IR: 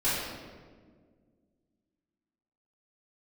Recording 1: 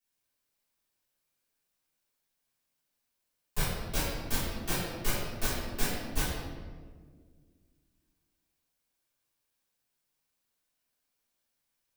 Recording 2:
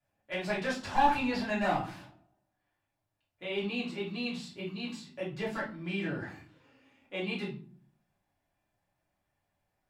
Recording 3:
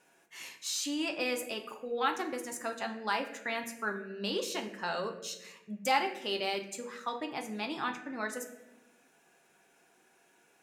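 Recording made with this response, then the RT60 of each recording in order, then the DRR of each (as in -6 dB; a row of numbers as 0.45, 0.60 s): 1; 1.7 s, not exponential, 1.0 s; -14.0, -8.0, 3.5 dB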